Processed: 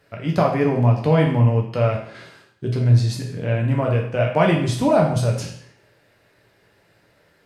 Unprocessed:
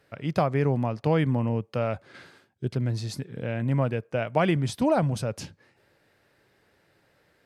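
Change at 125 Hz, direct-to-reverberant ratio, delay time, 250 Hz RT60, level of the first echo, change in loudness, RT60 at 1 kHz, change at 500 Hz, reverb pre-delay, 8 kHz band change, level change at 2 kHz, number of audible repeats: +9.0 dB, -1.0 dB, no echo, 0.65 s, no echo, +7.5 dB, 0.65 s, +7.0 dB, 8 ms, +6.0 dB, +6.0 dB, no echo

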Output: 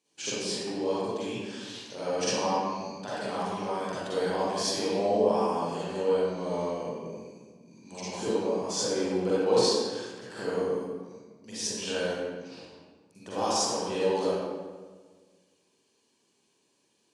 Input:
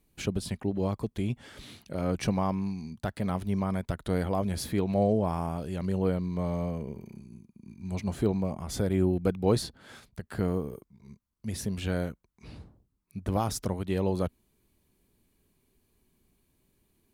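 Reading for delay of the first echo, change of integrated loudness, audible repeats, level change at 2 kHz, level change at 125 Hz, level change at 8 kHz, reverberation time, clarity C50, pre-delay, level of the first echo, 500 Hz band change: no echo, +1.0 dB, no echo, +4.5 dB, -11.5 dB, +8.5 dB, 1.5 s, -6.5 dB, 39 ms, no echo, +4.5 dB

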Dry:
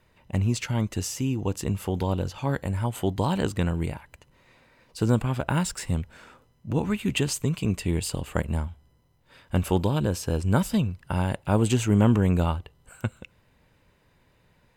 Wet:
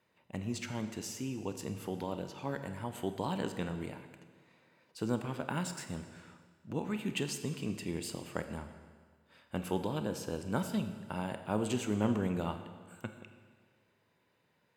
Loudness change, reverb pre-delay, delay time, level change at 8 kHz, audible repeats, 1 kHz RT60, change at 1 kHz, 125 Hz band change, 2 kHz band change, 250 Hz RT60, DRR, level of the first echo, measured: -11.0 dB, 28 ms, no echo, -10.0 dB, no echo, 1.7 s, -8.5 dB, -15.0 dB, -8.5 dB, 1.7 s, 8.0 dB, no echo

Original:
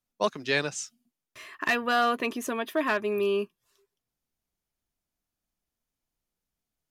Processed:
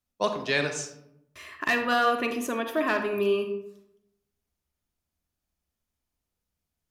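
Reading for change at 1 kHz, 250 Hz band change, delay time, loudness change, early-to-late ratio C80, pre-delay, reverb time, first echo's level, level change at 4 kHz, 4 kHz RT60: +1.0 dB, +1.5 dB, no echo, +1.0 dB, 10.0 dB, 39 ms, 0.80 s, no echo, +0.5 dB, 0.40 s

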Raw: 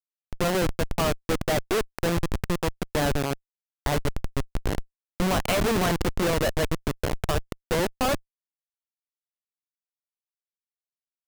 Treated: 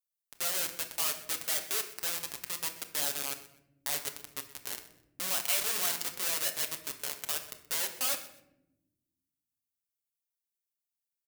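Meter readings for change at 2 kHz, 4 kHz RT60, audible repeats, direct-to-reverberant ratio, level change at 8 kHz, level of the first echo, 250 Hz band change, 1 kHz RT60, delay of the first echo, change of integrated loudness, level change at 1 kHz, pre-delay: -7.5 dB, 0.55 s, 2, 3.0 dB, +3.5 dB, -17.0 dB, -25.0 dB, 0.65 s, 126 ms, -5.0 dB, -13.5 dB, 7 ms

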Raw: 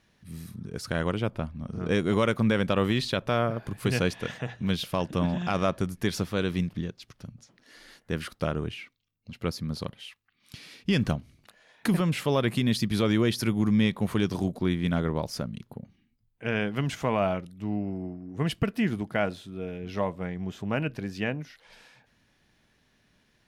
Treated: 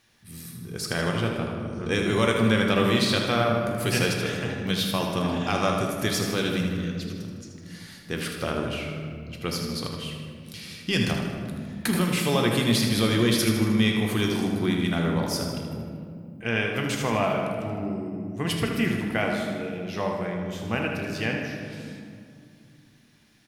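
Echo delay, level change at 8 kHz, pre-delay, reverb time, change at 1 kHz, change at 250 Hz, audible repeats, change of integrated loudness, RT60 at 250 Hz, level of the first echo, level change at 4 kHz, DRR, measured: 78 ms, +9.5 dB, 3 ms, 2.2 s, +3.5 dB, +2.0 dB, 2, +3.0 dB, 3.4 s, -7.5 dB, +7.0 dB, 0.0 dB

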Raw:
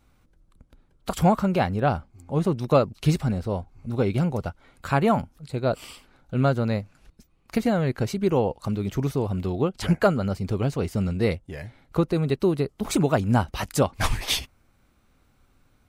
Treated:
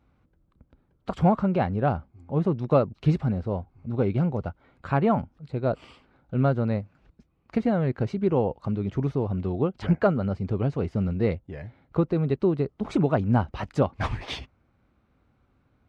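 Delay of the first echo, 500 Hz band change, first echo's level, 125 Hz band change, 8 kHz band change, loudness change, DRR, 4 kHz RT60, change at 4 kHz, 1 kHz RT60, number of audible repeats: no echo, -1.5 dB, no echo, -0.5 dB, under -15 dB, -1.0 dB, no reverb, no reverb, -10.5 dB, no reverb, no echo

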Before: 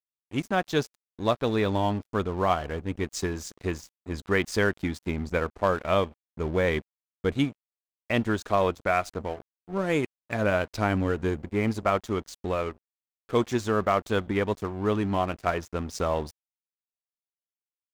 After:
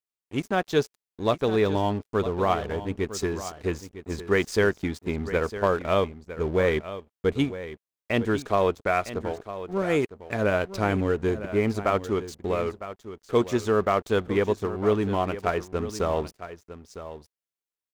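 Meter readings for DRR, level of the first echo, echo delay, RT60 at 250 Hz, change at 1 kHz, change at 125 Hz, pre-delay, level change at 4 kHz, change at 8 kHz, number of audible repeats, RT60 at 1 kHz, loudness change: no reverb, -13.0 dB, 956 ms, no reverb, +0.5 dB, +0.5 dB, no reverb, 0.0 dB, 0.0 dB, 1, no reverb, +1.5 dB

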